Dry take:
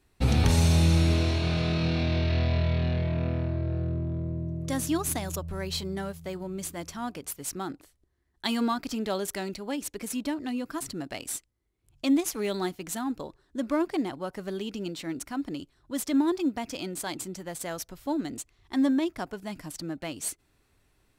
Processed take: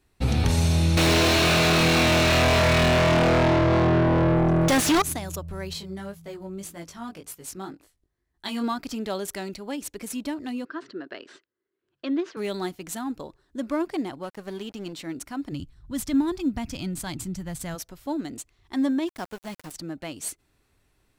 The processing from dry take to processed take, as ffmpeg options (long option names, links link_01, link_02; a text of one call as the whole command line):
ffmpeg -i in.wav -filter_complex "[0:a]asettb=1/sr,asplit=3[link_01][link_02][link_03];[link_01]atrim=end=0.974[link_04];[link_02]atrim=start=0.97:end=5.02,asetpts=PTS-STARTPTS,afade=type=in:duration=0.004:curve=qsin,afade=type=out:start_time=4.046:duration=0.004:curve=qsin,asplit=2[link_05][link_06];[link_06]highpass=frequency=720:poles=1,volume=40dB,asoftclip=type=tanh:threshold=-12.5dB[link_07];[link_05][link_07]amix=inputs=2:normalize=0,lowpass=frequency=3900:poles=1,volume=-6dB[link_08];[link_03]atrim=start=5.016[link_09];[link_04][link_08]acrossfade=duration=0.004:curve1=hsin:curve2=qsin[link_10];[link_10][link_09]acrossfade=duration=0.004:curve1=qsin:curve2=hsin,asettb=1/sr,asplit=3[link_11][link_12][link_13];[link_11]atrim=end=5.734[link_14];[link_12]atrim=start=5.73:end=8.64,asetpts=PTS-STARTPTS,afade=type=in:duration=0.004:curve=qsin,afade=type=out:start_time=2.906:duration=0.004:curve=qsin,flanger=delay=18:depth=3.4:speed=1.9[link_15];[link_13]atrim=start=8.636[link_16];[link_14][link_15]acrossfade=duration=0.004:curve1=hsin:curve2=qsin[link_17];[link_17][link_16]acrossfade=duration=0.004:curve1=qsin:curve2=hsin,asettb=1/sr,asplit=3[link_18][link_19][link_20];[link_18]atrim=end=10.654[link_21];[link_19]atrim=start=10.65:end=12.37,asetpts=PTS-STARTPTS,afade=type=in:duration=0.004:curve=qsin,afade=type=out:start_time=1.716:duration=0.004:curve=qsin,highpass=340,equalizer=frequency=380:width_type=q:width=4:gain=9,equalizer=frequency=790:width_type=q:width=4:gain=-10,equalizer=frequency=1600:width_type=q:width=4:gain=7,equalizer=frequency=2300:width_type=q:width=4:gain=-7,equalizer=frequency=3500:width_type=q:width=4:gain=-4,lowpass=frequency=3800:width=0.5412,lowpass=frequency=3800:width=1.3066[link_22];[link_20]atrim=start=12.366[link_23];[link_21][link_22]acrossfade=duration=0.004:curve1=hsin:curve2=qsin[link_24];[link_24][link_23]acrossfade=duration=0.004:curve1=qsin:curve2=hsin,asettb=1/sr,asplit=3[link_25][link_26][link_27];[link_25]atrim=end=14.234[link_28];[link_26]atrim=start=14.23:end=14.93,asetpts=PTS-STARTPTS,afade=type=in:duration=0.004:curve=qsin,afade=type=out:start_time=0.696:duration=0.004:curve=qsin,aeval=exprs='sgn(val(0))*max(abs(val(0))-0.00447,0)':channel_layout=same[link_29];[link_27]atrim=start=14.926[link_30];[link_28][link_29]acrossfade=duration=0.004:curve1=hsin:curve2=qsin[link_31];[link_31][link_30]acrossfade=duration=0.004:curve1=qsin:curve2=hsin,asplit=3[link_32][link_33][link_34];[link_32]afade=type=out:start_time=15.51:duration=0.02[link_35];[link_33]asubboost=boost=8.5:cutoff=140,afade=type=in:start_time=15.51:duration=0.02,afade=type=out:start_time=17.74:duration=0.02[link_36];[link_34]afade=type=in:start_time=17.74:duration=0.02[link_37];[link_35][link_36][link_37]amix=inputs=3:normalize=0,asettb=1/sr,asplit=3[link_38][link_39][link_40];[link_38]atrim=end=19.074[link_41];[link_39]atrim=start=19.07:end=19.72,asetpts=PTS-STARTPTS,afade=type=in:duration=0.004:curve=qsin,afade=type=out:start_time=0.646:duration=0.004:curve=qsin,aeval=exprs='val(0)*gte(abs(val(0)),0.0106)':channel_layout=same[link_42];[link_40]atrim=start=19.716[link_43];[link_41][link_42]acrossfade=duration=0.004:curve1=hsin:curve2=qsin[link_44];[link_44][link_43]acrossfade=duration=0.004:curve1=qsin:curve2=hsin" out.wav